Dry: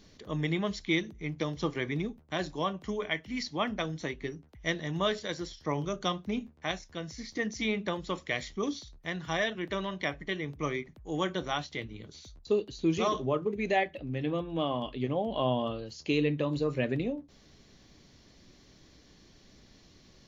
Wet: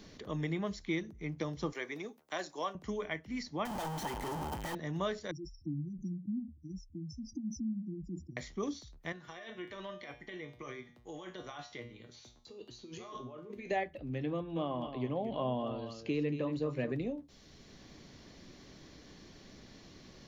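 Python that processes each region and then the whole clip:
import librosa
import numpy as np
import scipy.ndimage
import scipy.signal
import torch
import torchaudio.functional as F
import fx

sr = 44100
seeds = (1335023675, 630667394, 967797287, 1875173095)

y = fx.chain(x, sr, fx.highpass(hz=440.0, slope=12),
    fx.high_shelf(hz=4400.0, db=10.5), at=(1.72, 2.75))
y = fx.chain(y, sr, fx.clip_1bit(),
    fx.notch(hz=2200.0, q=26.0),
    fx.small_body(hz=(870.0, 3100.0), ring_ms=25, db=15), at=(3.65, 4.75))
y = fx.chain(y, sr, fx.spec_expand(power=2.6),
    fx.brickwall_bandstop(low_hz=350.0, high_hz=4800.0),
    fx.sustainer(db_per_s=140.0), at=(5.31, 8.37))
y = fx.chain(y, sr, fx.low_shelf(hz=180.0, db=-9.5),
    fx.over_compress(threshold_db=-36.0, ratio=-1.0),
    fx.comb_fb(f0_hz=120.0, decay_s=0.4, harmonics='all', damping=0.0, mix_pct=80), at=(9.12, 13.71))
y = fx.chain(y, sr, fx.highpass(hz=190.0, slope=6),
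    fx.bass_treble(bass_db=5, treble_db=-7),
    fx.echo_single(ms=228, db=-11.0), at=(14.33, 16.92))
y = fx.dynamic_eq(y, sr, hz=3200.0, q=1.4, threshold_db=-51.0, ratio=4.0, max_db=-7)
y = fx.band_squash(y, sr, depth_pct=40)
y = y * librosa.db_to_amplitude(-4.0)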